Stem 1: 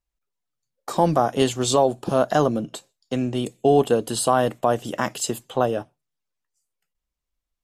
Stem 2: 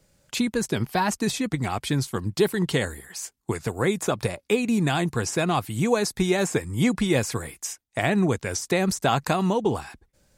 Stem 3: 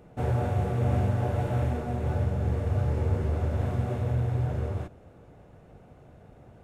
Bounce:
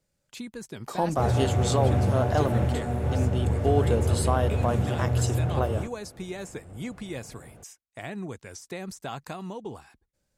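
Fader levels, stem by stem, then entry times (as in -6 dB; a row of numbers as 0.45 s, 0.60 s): -7.5 dB, -14.0 dB, +2.0 dB; 0.00 s, 0.00 s, 1.00 s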